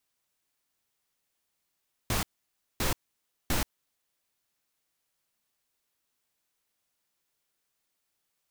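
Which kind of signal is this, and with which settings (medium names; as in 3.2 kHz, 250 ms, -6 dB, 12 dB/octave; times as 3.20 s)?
noise bursts pink, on 0.13 s, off 0.57 s, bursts 3, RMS -27.5 dBFS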